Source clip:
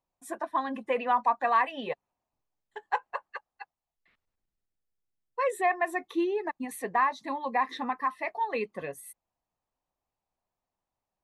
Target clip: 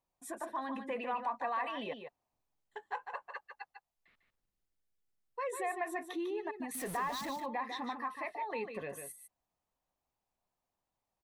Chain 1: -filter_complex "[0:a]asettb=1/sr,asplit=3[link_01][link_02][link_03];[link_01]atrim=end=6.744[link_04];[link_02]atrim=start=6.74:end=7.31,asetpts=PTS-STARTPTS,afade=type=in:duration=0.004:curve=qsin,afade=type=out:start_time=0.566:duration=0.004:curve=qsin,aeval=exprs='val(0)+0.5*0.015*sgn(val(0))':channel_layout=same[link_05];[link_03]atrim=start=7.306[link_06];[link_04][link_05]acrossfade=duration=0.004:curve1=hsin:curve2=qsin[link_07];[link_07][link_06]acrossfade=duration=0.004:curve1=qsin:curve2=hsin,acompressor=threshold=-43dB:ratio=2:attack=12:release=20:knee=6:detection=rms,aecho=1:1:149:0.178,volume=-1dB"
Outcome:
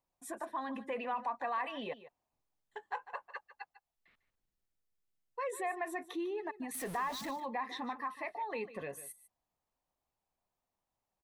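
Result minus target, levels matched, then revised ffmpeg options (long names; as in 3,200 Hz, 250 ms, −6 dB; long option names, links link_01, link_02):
echo-to-direct −7.5 dB
-filter_complex "[0:a]asettb=1/sr,asplit=3[link_01][link_02][link_03];[link_01]atrim=end=6.744[link_04];[link_02]atrim=start=6.74:end=7.31,asetpts=PTS-STARTPTS,afade=type=in:duration=0.004:curve=qsin,afade=type=out:start_time=0.566:duration=0.004:curve=qsin,aeval=exprs='val(0)+0.5*0.015*sgn(val(0))':channel_layout=same[link_05];[link_03]atrim=start=7.306[link_06];[link_04][link_05]acrossfade=duration=0.004:curve1=hsin:curve2=qsin[link_07];[link_07][link_06]acrossfade=duration=0.004:curve1=qsin:curve2=hsin,acompressor=threshold=-43dB:ratio=2:attack=12:release=20:knee=6:detection=rms,aecho=1:1:149:0.422,volume=-1dB"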